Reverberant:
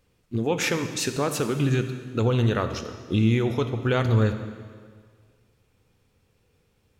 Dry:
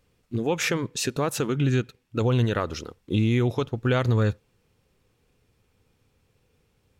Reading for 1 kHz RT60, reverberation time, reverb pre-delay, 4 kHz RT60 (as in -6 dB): 1.8 s, 1.8 s, 5 ms, 1.7 s